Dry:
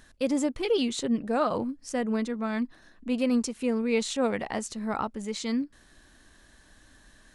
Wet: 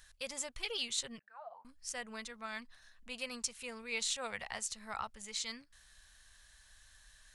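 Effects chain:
guitar amp tone stack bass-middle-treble 10-0-10
0:01.19–0:01.65: envelope filter 700–1,800 Hz, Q 11, down, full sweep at −33.5 dBFS

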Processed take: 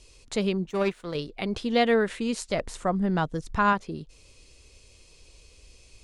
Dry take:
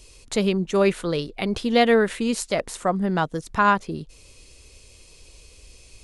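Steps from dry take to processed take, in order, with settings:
low-pass filter 8,600 Hz 12 dB per octave
0:00.69–0:01.15: power curve on the samples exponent 1.4
0:02.49–0:03.73: low-shelf EQ 120 Hz +11 dB
level −4.5 dB

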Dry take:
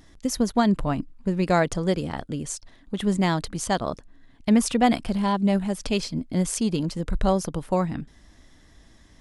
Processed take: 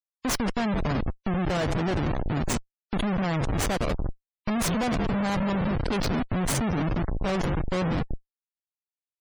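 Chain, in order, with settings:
echo with shifted repeats 178 ms, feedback 42%, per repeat −44 Hz, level −13 dB
comparator with hysteresis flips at −29.5 dBFS
gate on every frequency bin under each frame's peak −30 dB strong

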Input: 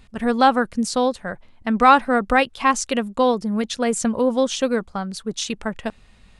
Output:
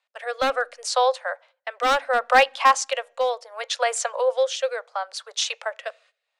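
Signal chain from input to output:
Butterworth high-pass 520 Hz 72 dB per octave
noise gate −52 dBFS, range −19 dB
Bessel low-pass filter 6,400 Hz, order 2
in parallel at −3.5 dB: wave folding −13.5 dBFS
on the sum: rotating-speaker cabinet horn 0.7 Hz
on a send at −22 dB: convolution reverb RT60 0.50 s, pre-delay 18 ms

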